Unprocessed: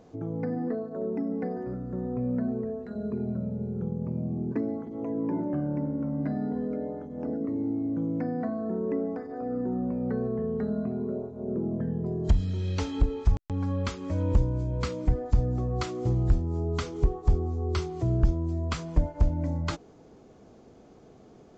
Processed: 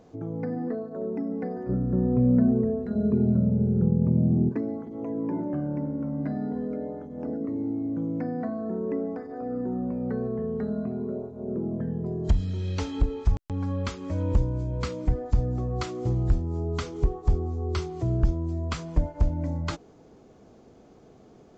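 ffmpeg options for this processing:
-filter_complex "[0:a]asettb=1/sr,asplit=3[a][b][c];[a]atrim=end=1.694[d];[b]atrim=start=1.69:end=4.49,asetpts=PTS-STARTPTS,afade=t=in:d=0.004:c=qsin,afade=t=out:st=2.796:d=0.004:c=qsin,lowshelf=f=460:g=11[e];[c]atrim=start=4.486[f];[d][e]acrossfade=d=0.004:c1=hsin:c2=qsin[g];[g][f]acrossfade=d=0.004:c1=qsin:c2=hsin"

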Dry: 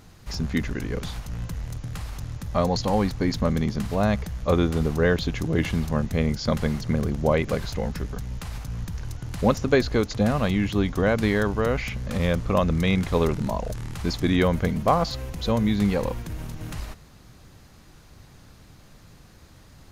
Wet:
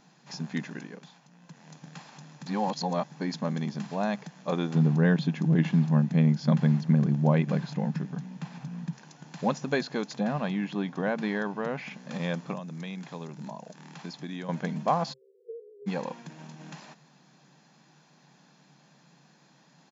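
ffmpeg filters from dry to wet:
-filter_complex "[0:a]asettb=1/sr,asplit=3[a][b][c];[a]atrim=end=4.754[d];[b]atrim=start=4.75:end=8.93,asetpts=PTS-STARTPTS,afade=t=in:d=0.004:c=qsin,afade=t=out:st=4.176:d=0.004:c=qsin,bass=f=250:g=13,treble=f=4k:g=-6[e];[c]atrim=start=8.926[f];[d][e]acrossfade=d=0.004:c1=hsin:c2=qsin[g];[g][f]acrossfade=d=0.004:c1=qsin:c2=hsin,asettb=1/sr,asplit=3[h][i][j];[h]atrim=end=10.204[k];[i]atrim=start=10.2:end=11.91,asetpts=PTS-STARTPTS,afade=t=in:d=0.004:c=qsin,afade=t=out:st=1.706:d=0.004:c=qsin,aemphasis=mode=reproduction:type=50fm[l];[j]atrim=start=11.906[m];[k][l]acrossfade=d=0.004:c1=hsin:c2=qsin[n];[n][m]acrossfade=d=0.004:c1=qsin:c2=hsin,asettb=1/sr,asplit=3[o][p][q];[o]atrim=end=12.534[r];[p]atrim=start=12.53:end=14.49,asetpts=PTS-STARTPTS,afade=t=in:d=0.004:c=qsin,afade=t=out:st=1.956:d=0.004:c=qsin,acrossover=split=260|5600[s][t][u];[s]acompressor=threshold=-31dB:ratio=4[v];[t]acompressor=threshold=-35dB:ratio=4[w];[u]acompressor=threshold=-50dB:ratio=4[x];[v][w][x]amix=inputs=3:normalize=0[y];[q]atrim=start=14.486[z];[r][y]acrossfade=d=0.004:c1=hsin:c2=qsin[aa];[aa][z]acrossfade=d=0.004:c1=qsin:c2=hsin,asplit=3[ab][ac][ad];[ab]afade=t=out:st=15.12:d=0.02[ae];[ac]asuperpass=centerf=430:order=12:qfactor=3.6,afade=t=in:st=15.12:d=0.02,afade=t=out:st=15.86:d=0.02[af];[ad]afade=t=in:st=15.86:d=0.02[ag];[ae][af][ag]amix=inputs=3:normalize=0,asplit=5[ah][ai][aj][ak][al];[ah]atrim=end=1.05,asetpts=PTS-STARTPTS,afade=t=out:st=0.73:d=0.32:silence=0.298538[am];[ai]atrim=start=1.05:end=1.41,asetpts=PTS-STARTPTS,volume=-10.5dB[an];[aj]atrim=start=1.41:end=2.462,asetpts=PTS-STARTPTS,afade=t=in:d=0.32:silence=0.298538[ao];[ak]atrim=start=2.458:end=3.122,asetpts=PTS-STARTPTS,areverse[ap];[al]atrim=start=3.118[aq];[am][an][ao]concat=n=3:v=0:a=1[ar];[ar][ap]acrossfade=d=0.004:c1=hsin:c2=hsin[as];[as][aq]acrossfade=d=0.004:c1=hsin:c2=hsin,afftfilt=real='re*between(b*sr/4096,130,7500)':imag='im*between(b*sr/4096,130,7500)':win_size=4096:overlap=0.75,equalizer=f=880:t=o:w=0.41:g=2.5,aecho=1:1:1.2:0.32,volume=-6.5dB"

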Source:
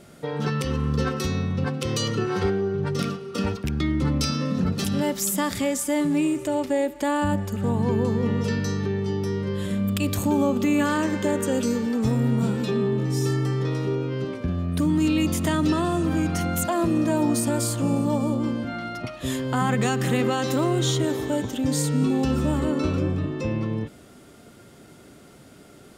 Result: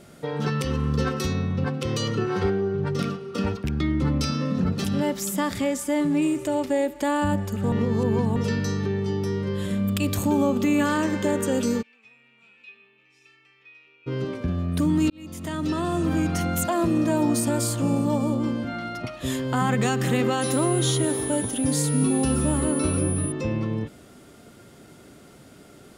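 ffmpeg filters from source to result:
-filter_complex "[0:a]asettb=1/sr,asplit=3[a][b][c];[a]atrim=end=1.334[d];[b]atrim=start=1.33:end=6.22,asetpts=PTS-STARTPTS,afade=t=in:d=0.004:c=qsin,afade=t=out:st=4.886:d=0.004:c=qsin,highshelf=f=4.3k:g=-6[e];[c]atrim=start=6.216[f];[d][e]acrossfade=d=0.004:c1=hsin:c2=qsin[g];[g][f]acrossfade=d=0.004:c1=qsin:c2=hsin,asplit=3[h][i][j];[h]afade=t=out:st=11.81:d=0.02[k];[i]bandpass=f=2.5k:t=q:w=15,afade=t=in:st=11.81:d=0.02,afade=t=out:st=14.06:d=0.02[l];[j]afade=t=in:st=14.06:d=0.02[m];[k][l][m]amix=inputs=3:normalize=0,asettb=1/sr,asplit=3[n][o][p];[n]atrim=end=20.414[q];[o]atrim=start=20.41:end=23.32,asetpts=PTS-STARTPTS,afade=t=in:d=0.004:c=qsin,afade=t=out:st=2.906:d=0.004:c=qsin,aeval=exprs='val(0)+0.0282*sin(2*PI*9800*n/s)':c=same[r];[p]atrim=start=23.316[s];[q][r]acrossfade=d=0.004:c1=hsin:c2=qsin[t];[t][s]acrossfade=d=0.004:c1=qsin:c2=hsin,asplit=4[u][v][w][x];[u]atrim=end=7.722[y];[v]atrim=start=7.718:end=8.362,asetpts=PTS-STARTPTS,areverse[z];[w]atrim=start=8.358:end=15.1,asetpts=PTS-STARTPTS,afade=t=out:st=6.738:d=0.004:c=hsin[aa];[x]atrim=start=15.1,asetpts=PTS-STARTPTS,afade=t=in:d=0.98[ab];[y][z]acrossfade=d=0.004:c1=hsin:c2=hsin[ac];[aa][ab]concat=n=2:v=0:a=1[ad];[ac][ad]acrossfade=d=0.004:c1=hsin:c2=hsin"

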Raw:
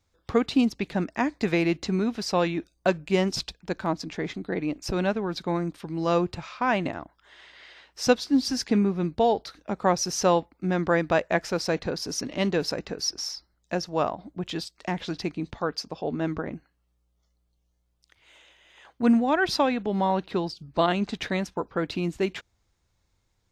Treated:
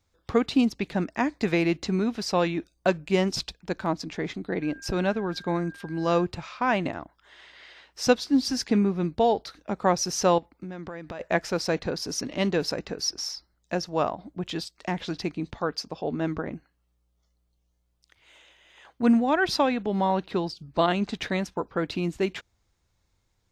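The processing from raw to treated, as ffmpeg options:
-filter_complex "[0:a]asettb=1/sr,asplit=3[a][b][c];[a]atrim=end=4.624[d];[b]atrim=start=4.62:end=6.26,asetpts=PTS-STARTPTS,afade=t=in:d=0.004:c=qsin,afade=t=out:st=1.636:d=0.004:c=qsin,aeval=exprs='val(0)+0.00562*sin(2*PI*1600*n/s)':c=same[e];[c]atrim=start=6.256[f];[d][e]acrossfade=d=0.004:c1=hsin:c2=qsin[g];[g][f]acrossfade=d=0.004:c1=qsin:c2=hsin,asettb=1/sr,asplit=3[h][i][j];[h]atrim=end=10.384[k];[i]atrim=start=10.38:end=11.2,asetpts=PTS-STARTPTS,afade=t=in:d=0.004:c=qsin,afade=t=out:st=0.816:d=0.004:c=qsin,acompressor=threshold=-33dB:ratio=12:attack=3.2:release=140:knee=1:detection=peak[l];[j]atrim=start=11.196[m];[k][l]acrossfade=d=0.004:c1=hsin:c2=qsin[n];[n][m]acrossfade=d=0.004:c1=qsin:c2=hsin"

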